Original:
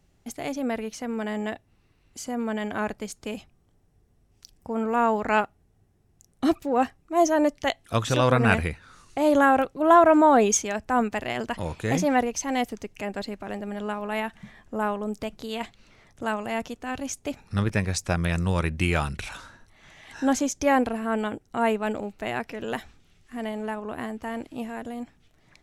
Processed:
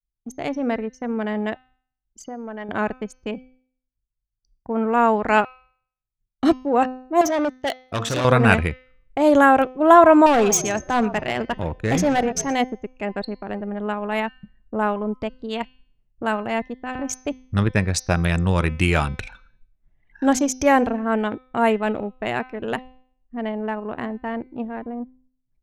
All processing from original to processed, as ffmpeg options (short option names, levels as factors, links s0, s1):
-filter_complex "[0:a]asettb=1/sr,asplit=3[s0][s1][s2];[s0]atrim=end=2.244[s3];[s1]atrim=start=2.24:end=2.69,asetpts=PTS-STARTPTS,afade=t=in:d=0.004:c=qsin,afade=t=out:st=0.446:d=0.004:c=qsin,highshelf=f=6400:g=-11,acompressor=threshold=0.02:ratio=10:attack=3.2:release=140:knee=1:detection=peak,asplit=2[s4][s5];[s5]highpass=f=720:p=1,volume=5.01,asoftclip=type=tanh:threshold=0.0631[s6];[s4][s6]amix=inputs=2:normalize=0,lowpass=f=4300:p=1,volume=0.501[s7];[s2]atrim=start=2.686[s8];[s3][s7]acrossfade=d=0.004:c1=hsin:c2=qsin[s9];[s9][s8]acrossfade=d=0.004:c1=qsin:c2=hsin,asettb=1/sr,asplit=3[s10][s11][s12];[s10]atrim=end=7.214[s13];[s11]atrim=start=7.21:end=8.25,asetpts=PTS-STARTPTS,afade=t=in:d=0.004:c=qsin,afade=t=out:st=1.036:d=0.004:c=qsin,bandreject=f=229.4:t=h:w=4,bandreject=f=458.8:t=h:w=4,bandreject=f=688.2:t=h:w=4,bandreject=f=917.6:t=h:w=4,bandreject=f=1147:t=h:w=4,bandreject=f=1376.4:t=h:w=4,bandreject=f=1605.8:t=h:w=4,bandreject=f=1835.2:t=h:w=4,bandreject=f=2064.6:t=h:w=4,bandreject=f=2294:t=h:w=4,bandreject=f=2523.4:t=h:w=4,bandreject=f=2752.8:t=h:w=4,bandreject=f=2982.2:t=h:w=4,bandreject=f=3211.6:t=h:w=4,bandreject=f=3441:t=h:w=4,bandreject=f=3670.4:t=h:w=4,bandreject=f=3899.8:t=h:w=4,bandreject=f=4129.2:t=h:w=4,bandreject=f=4358.6:t=h:w=4,bandreject=f=4588:t=h:w=4,bandreject=f=4817.4:t=h:w=4,bandreject=f=5046.8:t=h:w=4,bandreject=f=5276.2:t=h:w=4,bandreject=f=5505.6:t=h:w=4,bandreject=f=5735:t=h:w=4,bandreject=f=5964.4:t=h:w=4,bandreject=f=6193.8:t=h:w=4,bandreject=f=6423.2:t=h:w=4,bandreject=f=6652.6:t=h:w=4,bandreject=f=6882:t=h:w=4,bandreject=f=7111.4:t=h:w=4,bandreject=f=7340.8:t=h:w=4,bandreject=f=7570.2:t=h:w=4,bandreject=f=7799.6:t=h:w=4,bandreject=f=8029:t=h:w=4,bandreject=f=8258.4:t=h:w=4,asoftclip=type=hard:threshold=0.0668,highpass=f=140:p=1[s14];[s12]atrim=start=8.246[s15];[s13][s14]acrossfade=d=0.004:c1=hsin:c2=qsin[s16];[s16][s15]acrossfade=d=0.004:c1=qsin:c2=hsin,asettb=1/sr,asplit=3[s17][s18][s19];[s17]atrim=end=10.264[s20];[s18]atrim=start=10.26:end=12.55,asetpts=PTS-STARTPTS,afade=t=in:d=0.004:c=qsin,afade=t=out:st=2.286:d=0.004:c=qsin,asplit=6[s21][s22][s23][s24][s25][s26];[s22]adelay=121,afreqshift=-46,volume=0.178[s27];[s23]adelay=242,afreqshift=-92,volume=0.0955[s28];[s24]adelay=363,afreqshift=-138,volume=0.0519[s29];[s25]adelay=484,afreqshift=-184,volume=0.0279[s30];[s26]adelay=605,afreqshift=-230,volume=0.0151[s31];[s21][s27][s28][s29][s30][s31]amix=inputs=6:normalize=0,atrim=end_sample=100989,volume=8.41,asoftclip=hard,volume=0.119[s32];[s19]atrim=start=12.546[s33];[s20][s32]acrossfade=d=0.004:c1=hsin:c2=qsin[s34];[s34][s33]acrossfade=d=0.004:c1=qsin:c2=hsin,agate=range=0.0224:threshold=0.00316:ratio=3:detection=peak,anlmdn=10,bandreject=f=256.1:t=h:w=4,bandreject=f=512.2:t=h:w=4,bandreject=f=768.3:t=h:w=4,bandreject=f=1024.4:t=h:w=4,bandreject=f=1280.5:t=h:w=4,bandreject=f=1536.6:t=h:w=4,bandreject=f=1792.7:t=h:w=4,bandreject=f=2048.8:t=h:w=4,bandreject=f=2304.9:t=h:w=4,bandreject=f=2561:t=h:w=4,bandreject=f=2817.1:t=h:w=4,bandreject=f=3073.2:t=h:w=4,bandreject=f=3329.3:t=h:w=4,bandreject=f=3585.4:t=h:w=4,bandreject=f=3841.5:t=h:w=4,bandreject=f=4097.6:t=h:w=4,bandreject=f=4353.7:t=h:w=4,bandreject=f=4609.8:t=h:w=4,bandreject=f=4865.9:t=h:w=4,bandreject=f=5122:t=h:w=4,bandreject=f=5378.1:t=h:w=4,bandreject=f=5634.2:t=h:w=4,bandreject=f=5890.3:t=h:w=4,bandreject=f=6146.4:t=h:w=4,bandreject=f=6402.5:t=h:w=4,volume=1.78"